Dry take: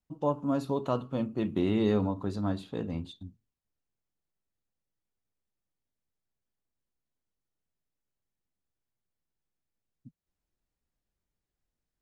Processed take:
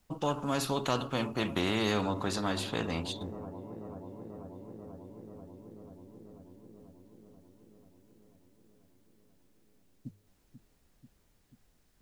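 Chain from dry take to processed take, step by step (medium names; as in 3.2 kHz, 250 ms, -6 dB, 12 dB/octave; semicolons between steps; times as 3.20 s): hum notches 50/100 Hz; feedback echo behind a low-pass 488 ms, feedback 71%, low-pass 740 Hz, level -21 dB; spectrum-flattening compressor 2:1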